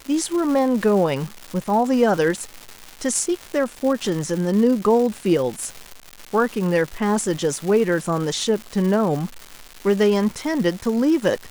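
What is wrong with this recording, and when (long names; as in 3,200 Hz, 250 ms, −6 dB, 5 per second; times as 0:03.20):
surface crackle 410 per second −27 dBFS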